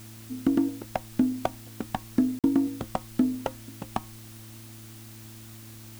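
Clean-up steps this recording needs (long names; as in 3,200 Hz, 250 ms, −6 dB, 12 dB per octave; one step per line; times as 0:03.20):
hum removal 111.2 Hz, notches 3
repair the gap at 0:02.39, 47 ms
broadband denoise 27 dB, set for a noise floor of −45 dBFS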